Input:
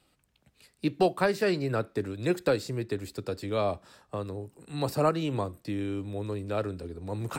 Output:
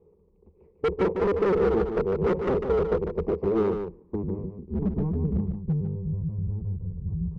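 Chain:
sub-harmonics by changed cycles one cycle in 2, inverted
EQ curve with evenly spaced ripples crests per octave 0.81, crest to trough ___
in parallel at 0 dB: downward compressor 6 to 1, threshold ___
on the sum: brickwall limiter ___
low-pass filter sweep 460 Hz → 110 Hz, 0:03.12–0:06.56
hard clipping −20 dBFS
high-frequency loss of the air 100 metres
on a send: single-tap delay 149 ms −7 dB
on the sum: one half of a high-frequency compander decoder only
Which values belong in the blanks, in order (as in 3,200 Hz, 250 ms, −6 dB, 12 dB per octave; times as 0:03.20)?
14 dB, −32 dBFS, −9 dBFS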